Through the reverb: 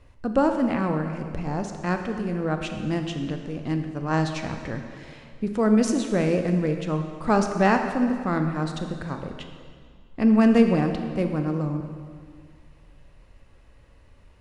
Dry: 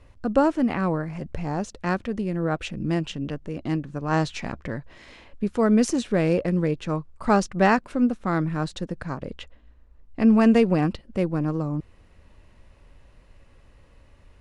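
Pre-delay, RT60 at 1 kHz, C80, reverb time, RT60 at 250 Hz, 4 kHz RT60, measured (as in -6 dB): 24 ms, 2.0 s, 7.5 dB, 2.0 s, 2.1 s, 1.7 s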